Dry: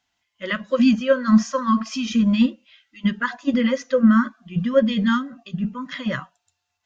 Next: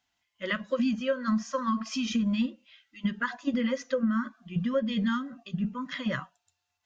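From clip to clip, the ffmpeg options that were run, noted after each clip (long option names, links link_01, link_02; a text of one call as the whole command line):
ffmpeg -i in.wav -af "acompressor=threshold=-20dB:ratio=6,volume=-4dB" out.wav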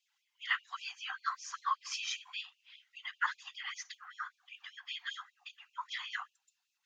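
ffmpeg -i in.wav -af "afftfilt=real='hypot(re,im)*cos(2*PI*random(0))':imag='hypot(re,im)*sin(2*PI*random(1))':win_size=512:overlap=0.75,afftfilt=real='re*gte(b*sr/1024,710*pow(2400/710,0.5+0.5*sin(2*PI*5.1*pts/sr)))':imag='im*gte(b*sr/1024,710*pow(2400/710,0.5+0.5*sin(2*PI*5.1*pts/sr)))':win_size=1024:overlap=0.75,volume=5dB" out.wav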